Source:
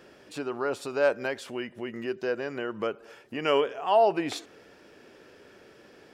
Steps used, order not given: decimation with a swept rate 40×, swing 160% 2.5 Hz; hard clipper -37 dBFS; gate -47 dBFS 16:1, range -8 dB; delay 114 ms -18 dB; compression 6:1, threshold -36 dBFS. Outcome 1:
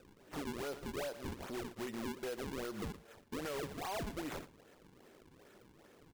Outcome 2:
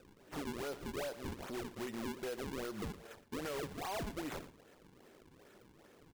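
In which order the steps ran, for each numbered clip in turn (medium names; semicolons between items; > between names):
decimation with a swept rate > delay > compression > hard clipper > gate; gate > decimation with a swept rate > compression > delay > hard clipper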